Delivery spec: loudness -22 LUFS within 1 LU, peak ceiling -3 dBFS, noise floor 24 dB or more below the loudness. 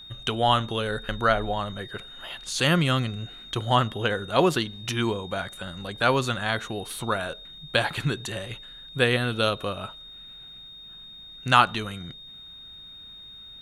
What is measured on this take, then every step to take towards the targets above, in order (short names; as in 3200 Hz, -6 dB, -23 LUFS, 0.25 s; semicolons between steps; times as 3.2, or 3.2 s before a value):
steady tone 3700 Hz; tone level -42 dBFS; loudness -25.5 LUFS; peak -2.5 dBFS; loudness target -22.0 LUFS
-> notch 3700 Hz, Q 30; gain +3.5 dB; limiter -3 dBFS